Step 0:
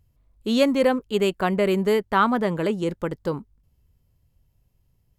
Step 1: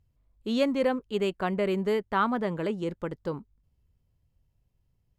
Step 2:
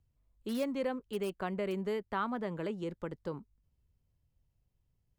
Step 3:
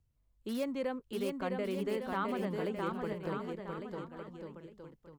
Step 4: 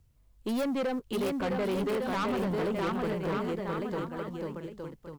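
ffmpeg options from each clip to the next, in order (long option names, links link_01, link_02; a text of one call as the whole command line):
ffmpeg -i in.wav -af "highshelf=frequency=8600:gain=-11.5,volume=-6dB" out.wav
ffmpeg -i in.wav -filter_complex "[0:a]acompressor=threshold=-31dB:ratio=1.5,acrossover=split=270|2300[link_01][link_02][link_03];[link_03]aeval=exprs='(mod(53.1*val(0)+1,2)-1)/53.1':channel_layout=same[link_04];[link_01][link_02][link_04]amix=inputs=3:normalize=0,volume=-5dB" out.wav
ffmpeg -i in.wav -af "aecho=1:1:660|1155|1526|1805|2014:0.631|0.398|0.251|0.158|0.1,volume=-1.5dB" out.wav
ffmpeg -i in.wav -filter_complex "[0:a]asplit=2[link_01][link_02];[link_02]acrusher=bits=5:mode=log:mix=0:aa=0.000001,volume=-4dB[link_03];[link_01][link_03]amix=inputs=2:normalize=0,asoftclip=type=tanh:threshold=-33dB,volume=6.5dB" out.wav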